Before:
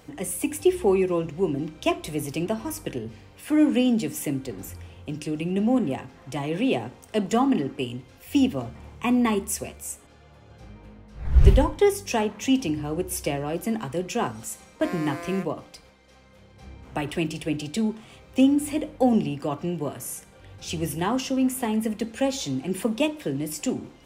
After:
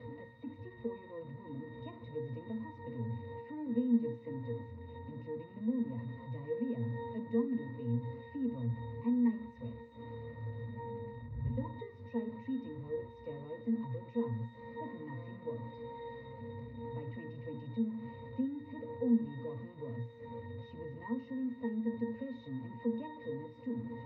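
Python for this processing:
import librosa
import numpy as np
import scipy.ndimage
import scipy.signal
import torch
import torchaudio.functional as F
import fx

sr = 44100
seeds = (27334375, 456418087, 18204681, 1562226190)

y = x + 0.5 * 10.0 ** (-22.5 / 20.0) * np.sign(x)
y = scipy.signal.sosfilt(scipy.signal.butter(2, 71.0, 'highpass', fs=sr, output='sos'), y)
y = fx.air_absorb(y, sr, metres=250.0)
y = fx.notch(y, sr, hz=1100.0, q=28.0)
y = fx.octave_resonator(y, sr, note='A#', decay_s=0.31)
y = y * librosa.db_to_amplitude(-1.5)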